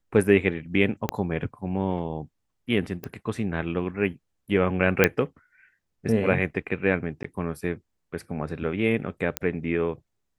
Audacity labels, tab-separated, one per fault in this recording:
1.090000	1.090000	click −10 dBFS
3.040000	3.040000	click −19 dBFS
5.040000	5.040000	click −3 dBFS
7.230000	7.240000	drop-out 14 ms
9.370000	9.370000	click −7 dBFS

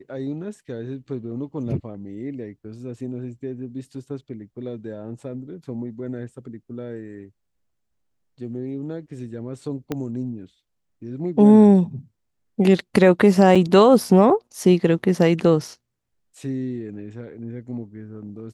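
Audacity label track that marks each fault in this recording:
9.920000	9.920000	click −13 dBFS
13.550000	13.560000	drop-out 5.6 ms

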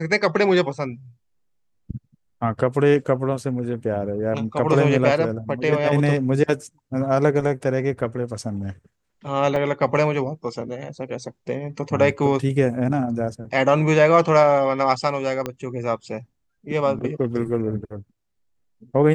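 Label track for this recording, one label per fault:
9.560000	9.560000	drop-out 2.2 ms
15.460000	15.460000	click −12 dBFS

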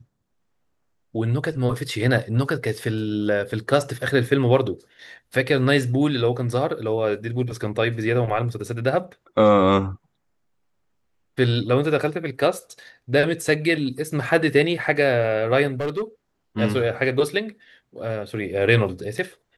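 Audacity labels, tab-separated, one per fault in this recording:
15.740000	16.020000	clipping −21 dBFS

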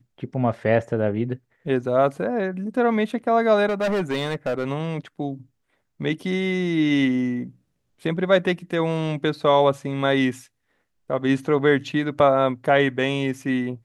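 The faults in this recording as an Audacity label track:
3.690000	4.670000	clipping −19.5 dBFS

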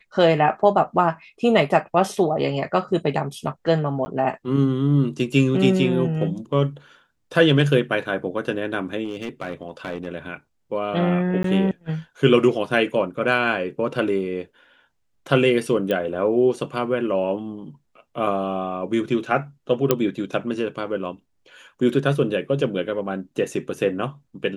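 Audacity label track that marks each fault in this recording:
4.050000	4.060000	drop-out 10 ms
9.050000	10.070000	clipping −23 dBFS
11.430000	11.440000	drop-out
15.910000	15.910000	click −12 dBFS
19.910000	19.910000	click −2 dBFS

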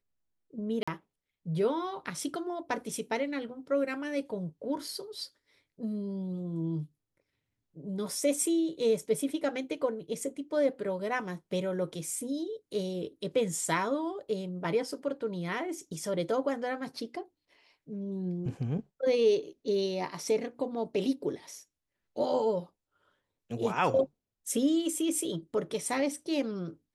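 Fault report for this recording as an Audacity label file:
0.830000	0.880000	drop-out 45 ms

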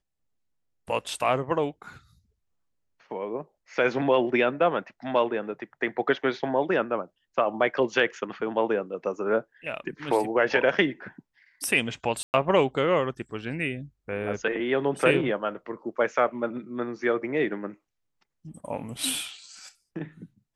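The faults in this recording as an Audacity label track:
12.230000	12.340000	drop-out 109 ms

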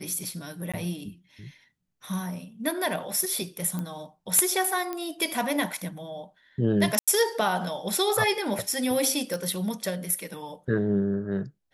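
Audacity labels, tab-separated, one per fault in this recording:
0.720000	0.740000	drop-out 16 ms
3.790000	3.790000	click −19 dBFS
4.930000	4.930000	click −18 dBFS
6.990000	7.080000	drop-out 86 ms
9.340000	9.340000	click −17 dBFS

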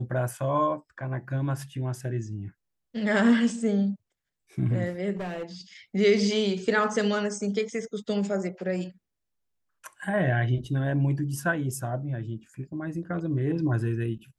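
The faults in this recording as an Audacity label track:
5.160000	5.430000	clipping −29 dBFS

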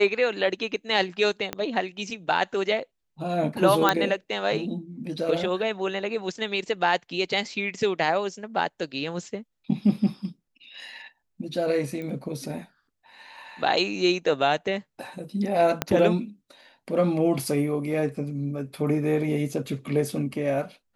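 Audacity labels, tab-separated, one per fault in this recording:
1.530000	1.530000	click −14 dBFS
3.890000	3.890000	click −5 dBFS
12.020000	12.020000	click −24 dBFS
15.820000	15.820000	click −7 dBFS

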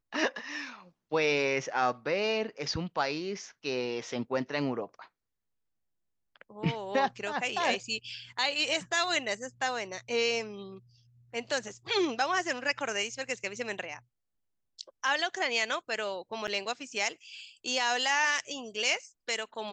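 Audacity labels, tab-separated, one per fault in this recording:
16.470000	16.480000	drop-out 8.4 ms

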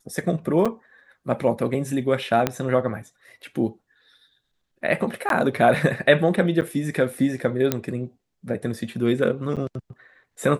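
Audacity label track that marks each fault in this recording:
0.650000	0.660000	drop-out 5.6 ms
2.470000	2.470000	click −6 dBFS
5.290000	5.300000	drop-out 12 ms
6.610000	6.620000	drop-out 8.6 ms
7.720000	7.720000	click −5 dBFS
9.560000	9.570000	drop-out 7.5 ms

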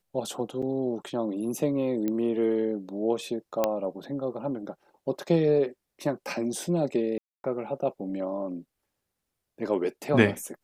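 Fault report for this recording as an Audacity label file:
0.620000	0.630000	drop-out 5.4 ms
2.080000	2.080000	click −17 dBFS
3.640000	3.640000	click −10 dBFS
7.180000	7.440000	drop-out 261 ms

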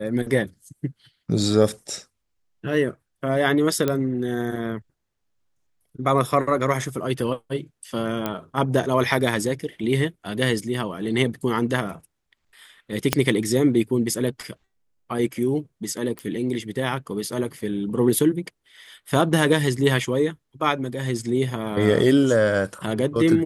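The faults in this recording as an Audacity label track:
3.880000	3.880000	click −9 dBFS
8.260000	8.260000	click −11 dBFS
13.130000	13.130000	click −2 dBFS
16.190000	16.190000	click −17 dBFS

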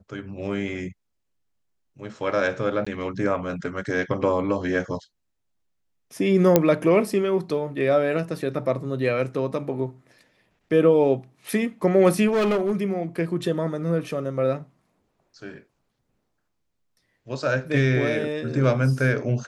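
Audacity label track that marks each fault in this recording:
2.850000	2.870000	drop-out 15 ms
6.560000	6.560000	click −2 dBFS
12.270000	12.720000	clipping −18 dBFS

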